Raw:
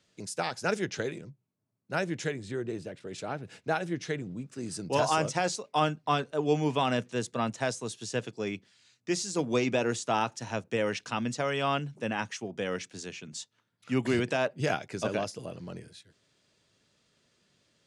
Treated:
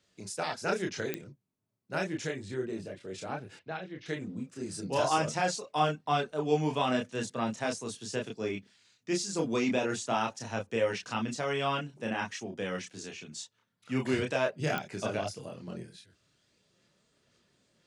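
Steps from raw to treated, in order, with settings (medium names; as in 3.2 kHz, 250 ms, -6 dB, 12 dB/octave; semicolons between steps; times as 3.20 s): 3.56–4.06 s: four-pole ladder low-pass 4.6 kHz, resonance 30%; chorus voices 6, 0.48 Hz, delay 29 ms, depth 2.9 ms; clicks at 1.14/14.78 s, -18 dBFS; trim +1.5 dB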